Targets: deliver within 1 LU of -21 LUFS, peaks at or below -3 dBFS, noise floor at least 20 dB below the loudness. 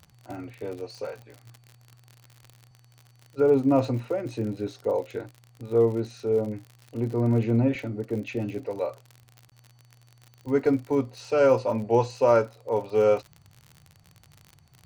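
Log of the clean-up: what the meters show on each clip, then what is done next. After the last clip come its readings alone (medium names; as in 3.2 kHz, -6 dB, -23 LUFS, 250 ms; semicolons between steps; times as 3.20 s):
tick rate 54 per s; loudness -25.5 LUFS; peak level -8.5 dBFS; loudness target -21.0 LUFS
-> de-click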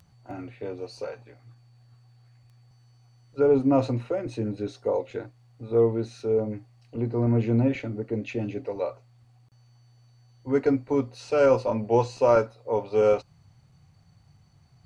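tick rate 0.27 per s; loudness -25.5 LUFS; peak level -8.5 dBFS; loudness target -21.0 LUFS
-> trim +4.5 dB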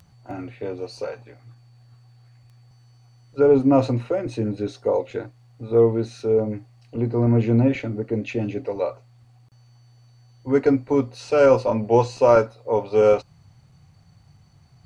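loudness -21.0 LUFS; peak level -4.0 dBFS; noise floor -54 dBFS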